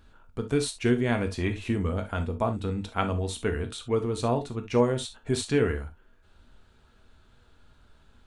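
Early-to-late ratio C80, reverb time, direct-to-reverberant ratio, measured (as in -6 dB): 37.0 dB, not exponential, 6.0 dB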